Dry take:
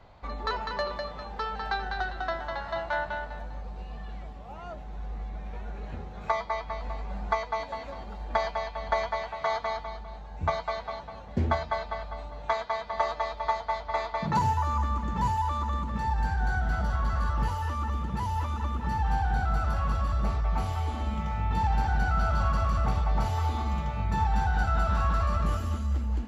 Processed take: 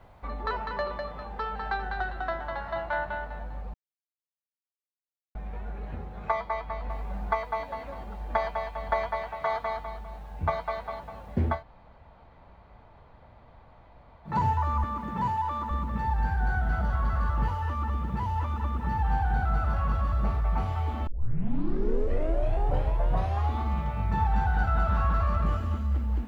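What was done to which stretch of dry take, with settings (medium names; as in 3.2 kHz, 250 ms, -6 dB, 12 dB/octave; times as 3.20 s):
3.74–5.35 s: mute
6.90 s: noise floor step -68 dB -58 dB
11.56–14.32 s: room tone, crossfade 0.16 s
14.84–15.71 s: high-pass 120 Hz
21.07 s: tape start 2.51 s
whole clip: tone controls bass +1 dB, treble -15 dB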